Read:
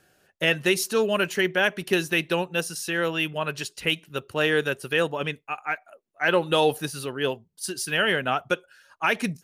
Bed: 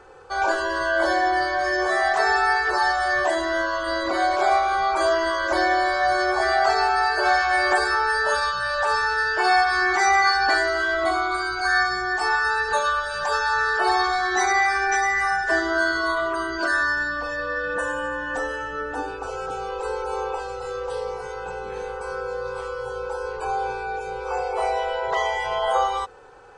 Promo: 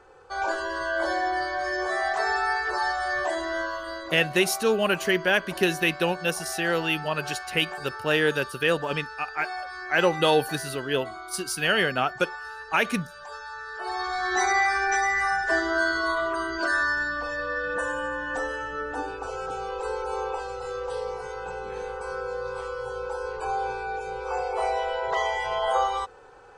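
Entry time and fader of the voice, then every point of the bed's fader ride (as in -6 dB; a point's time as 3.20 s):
3.70 s, 0.0 dB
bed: 3.66 s -5.5 dB
4.32 s -16.5 dB
13.65 s -16.5 dB
14.33 s -2.5 dB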